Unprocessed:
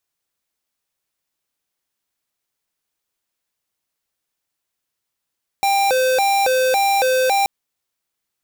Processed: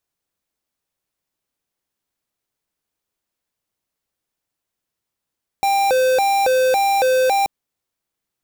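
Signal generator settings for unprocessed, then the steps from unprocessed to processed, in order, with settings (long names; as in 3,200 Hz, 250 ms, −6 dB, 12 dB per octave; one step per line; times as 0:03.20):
siren hi-lo 515–792 Hz 1.8 per second square −16.5 dBFS 1.83 s
tilt shelving filter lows +3.5 dB, about 840 Hz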